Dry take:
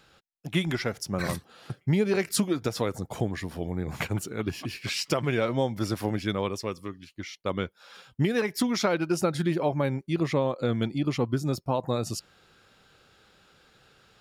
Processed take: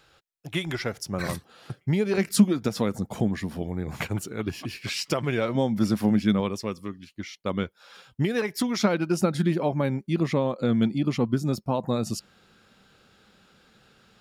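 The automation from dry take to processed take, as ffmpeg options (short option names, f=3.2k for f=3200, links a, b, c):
-af "asetnsamples=n=441:p=0,asendcmd='0.8 equalizer g -0.5;2.18 equalizer g 10.5;3.62 equalizer g 1.5;5.55 equalizer g 13;6.4 equalizer g 6.5;7.63 equalizer g -0.5;8.8 equalizer g 9.5',equalizer=f=210:t=o:w=0.5:g=-10"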